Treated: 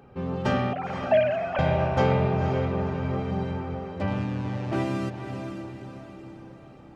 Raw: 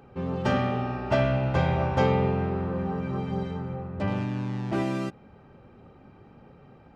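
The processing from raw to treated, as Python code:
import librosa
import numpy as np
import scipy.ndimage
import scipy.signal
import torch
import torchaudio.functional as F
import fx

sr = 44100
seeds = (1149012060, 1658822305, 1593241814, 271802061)

y = fx.sine_speech(x, sr, at=(0.73, 1.59))
y = fx.vibrato(y, sr, rate_hz=2.9, depth_cents=10.0)
y = fx.echo_diffused(y, sr, ms=511, feedback_pct=48, wet_db=-7.0)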